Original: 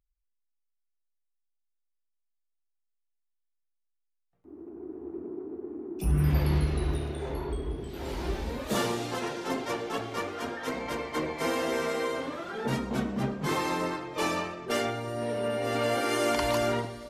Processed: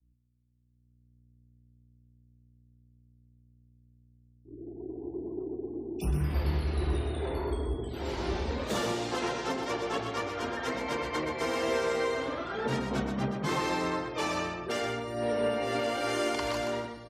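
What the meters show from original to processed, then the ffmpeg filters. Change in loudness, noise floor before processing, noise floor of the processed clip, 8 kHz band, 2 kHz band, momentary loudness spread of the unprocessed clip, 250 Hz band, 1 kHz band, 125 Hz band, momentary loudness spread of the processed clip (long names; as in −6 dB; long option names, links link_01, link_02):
−1.5 dB, −79 dBFS, −66 dBFS, −2.5 dB, −0.5 dB, 12 LU, −1.5 dB, −0.5 dB, −3.0 dB, 8 LU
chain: -filter_complex "[0:a]highpass=frequency=59:width=0.5412,highpass=frequency=59:width=1.3066,aeval=exprs='val(0)+0.00282*(sin(2*PI*60*n/s)+sin(2*PI*2*60*n/s)/2+sin(2*PI*3*60*n/s)/3+sin(2*PI*4*60*n/s)/4+sin(2*PI*5*60*n/s)/5)':channel_layout=same,acrossover=split=120|1000[link_01][link_02][link_03];[link_01]acontrast=80[link_04];[link_04][link_02][link_03]amix=inputs=3:normalize=0,bass=frequency=250:gain=-5,treble=frequency=4000:gain=4,afftfilt=real='re*gte(hypot(re,im),0.00355)':imag='im*gte(hypot(re,im),0.00355)':win_size=1024:overlap=0.75,equalizer=frequency=12000:width_type=o:width=0.95:gain=-12,alimiter=limit=-22dB:level=0:latency=1:release=458,dynaudnorm=framelen=240:gausssize=7:maxgain=4dB,asplit=2[link_05][link_06];[link_06]aecho=0:1:125:0.473[link_07];[link_05][link_07]amix=inputs=2:normalize=0,agate=range=-33dB:threshold=-42dB:ratio=3:detection=peak,volume=-2.5dB"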